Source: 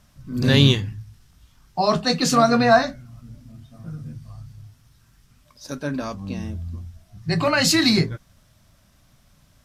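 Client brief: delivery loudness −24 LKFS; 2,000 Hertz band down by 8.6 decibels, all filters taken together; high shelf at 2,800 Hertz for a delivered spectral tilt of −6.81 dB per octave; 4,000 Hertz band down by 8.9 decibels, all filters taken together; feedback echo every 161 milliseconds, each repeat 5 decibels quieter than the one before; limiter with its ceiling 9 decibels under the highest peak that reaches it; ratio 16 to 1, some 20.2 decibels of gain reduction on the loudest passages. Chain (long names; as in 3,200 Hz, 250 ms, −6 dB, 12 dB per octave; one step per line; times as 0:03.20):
parametric band 2,000 Hz −8.5 dB
high-shelf EQ 2,800 Hz −6 dB
parametric band 4,000 Hz −3.5 dB
downward compressor 16 to 1, threshold −31 dBFS
brickwall limiter −30.5 dBFS
repeating echo 161 ms, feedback 56%, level −5 dB
level +15 dB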